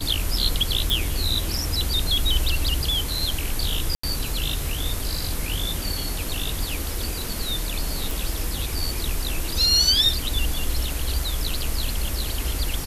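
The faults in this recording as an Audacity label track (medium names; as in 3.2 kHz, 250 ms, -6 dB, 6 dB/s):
0.900000	0.900000	pop
3.950000	4.030000	dropout 84 ms
8.110000	8.110000	pop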